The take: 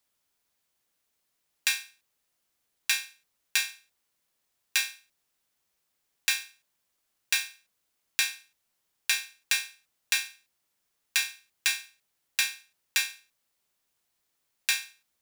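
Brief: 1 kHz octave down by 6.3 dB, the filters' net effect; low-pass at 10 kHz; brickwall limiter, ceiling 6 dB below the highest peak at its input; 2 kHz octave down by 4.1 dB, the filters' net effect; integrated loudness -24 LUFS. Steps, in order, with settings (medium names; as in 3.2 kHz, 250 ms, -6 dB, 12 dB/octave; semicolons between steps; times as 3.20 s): low-pass 10 kHz; peaking EQ 1 kHz -7 dB; peaking EQ 2 kHz -4 dB; trim +10.5 dB; peak limiter -5 dBFS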